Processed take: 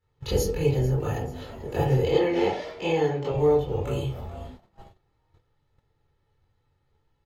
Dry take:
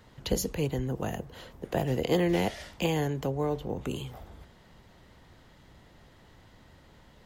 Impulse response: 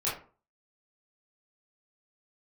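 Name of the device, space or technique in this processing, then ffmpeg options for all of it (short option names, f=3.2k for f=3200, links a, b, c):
microphone above a desk: -filter_complex "[0:a]asettb=1/sr,asplit=3[a][b][c];[a]atrim=end=2.094[d];[b]atrim=start=2.09:end=3.32,asetpts=PTS-STARTPTS,afade=t=in:d=0.004:c=qsin,afade=t=out:st=1.226:d=0.004:c=qsin,acrossover=split=160 6300:gain=0.141 1 0.1[e][f][g];[e][f][g]amix=inputs=3:normalize=0[h];[c]atrim=start=3.316[i];[d][h]acrossfade=d=0.004:c1=hsin:c2=qsin[j];[j][i]acrossfade=d=0.004:c1=qsin:c2=hsin,aecho=1:1:2.3:0.54[k];[1:a]atrim=start_sample=2205[l];[k][l]afir=irnorm=-1:irlink=0,asplit=5[m][n][o][p][q];[n]adelay=439,afreqshift=120,volume=-17dB[r];[o]adelay=878,afreqshift=240,volume=-24.3dB[s];[p]adelay=1317,afreqshift=360,volume=-31.7dB[t];[q]adelay=1756,afreqshift=480,volume=-39dB[u];[m][r][s][t][u]amix=inputs=5:normalize=0,agate=range=-22dB:threshold=-41dB:ratio=16:detection=peak,lowshelf=f=230:g=7,volume=-5.5dB"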